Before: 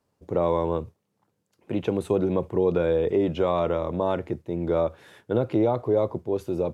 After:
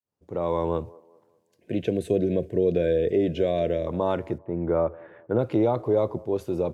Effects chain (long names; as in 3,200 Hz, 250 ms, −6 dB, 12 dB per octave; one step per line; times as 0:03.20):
fade in at the beginning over 0.68 s
0:01.43–0:03.87: gain on a spectral selection 720–1,500 Hz −19 dB
0:04.38–0:05.39: low-pass filter 2,000 Hz 24 dB per octave
on a send: delay with a band-pass on its return 196 ms, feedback 39%, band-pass 570 Hz, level −22 dB